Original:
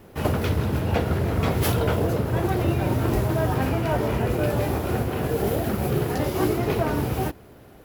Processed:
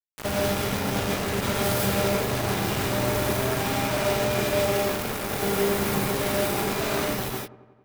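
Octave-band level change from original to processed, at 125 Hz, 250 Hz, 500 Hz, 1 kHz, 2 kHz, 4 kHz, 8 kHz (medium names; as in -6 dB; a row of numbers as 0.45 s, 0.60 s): -7.0 dB, -3.0 dB, -0.5 dB, +0.5 dB, +4.0 dB, +7.0 dB, +8.0 dB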